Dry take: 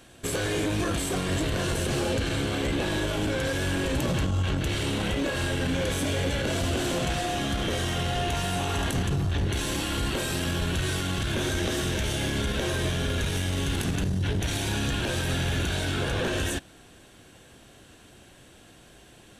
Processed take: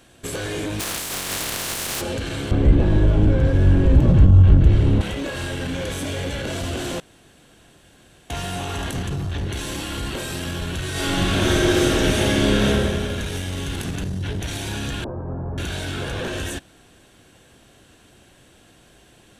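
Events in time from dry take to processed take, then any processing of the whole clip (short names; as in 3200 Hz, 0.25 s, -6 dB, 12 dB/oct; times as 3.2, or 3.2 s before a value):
0.79–2 spectral contrast lowered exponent 0.25
2.51–5.01 tilt -4.5 dB/oct
7–8.3 room tone
10.91–12.65 reverb throw, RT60 1.9 s, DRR -8.5 dB
15.04–15.58 Chebyshev low-pass 1100 Hz, order 4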